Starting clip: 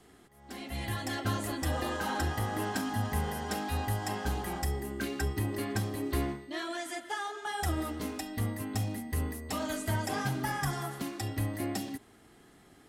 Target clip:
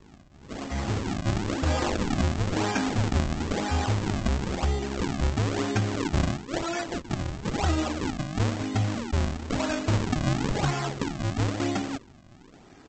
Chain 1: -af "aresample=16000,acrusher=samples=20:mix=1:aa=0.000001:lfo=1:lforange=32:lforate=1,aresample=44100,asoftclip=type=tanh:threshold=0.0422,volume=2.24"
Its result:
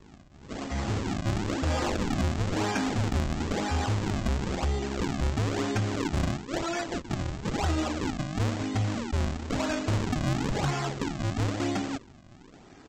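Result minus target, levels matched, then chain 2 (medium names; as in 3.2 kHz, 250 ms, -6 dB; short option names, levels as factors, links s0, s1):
saturation: distortion +18 dB
-af "aresample=16000,acrusher=samples=20:mix=1:aa=0.000001:lfo=1:lforange=32:lforate=1,aresample=44100,asoftclip=type=tanh:threshold=0.158,volume=2.24"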